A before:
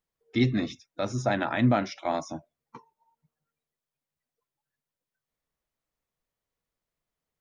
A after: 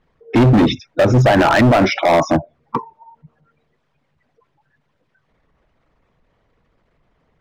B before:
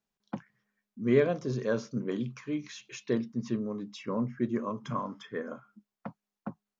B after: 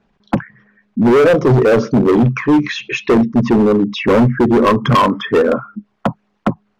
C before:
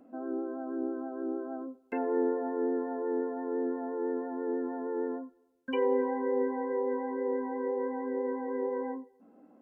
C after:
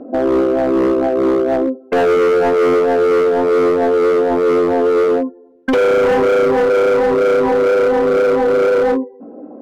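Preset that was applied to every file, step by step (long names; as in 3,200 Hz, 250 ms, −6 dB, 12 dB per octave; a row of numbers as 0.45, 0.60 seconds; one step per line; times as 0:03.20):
spectral envelope exaggerated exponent 1.5
low-pass filter 2,700 Hz 12 dB per octave
dynamic equaliser 200 Hz, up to −4 dB, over −41 dBFS, Q 1.2
brickwall limiter −24 dBFS
hard clipping −35 dBFS
loudness normalisation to −14 LKFS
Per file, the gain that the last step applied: +26.0, +27.5, +24.0 decibels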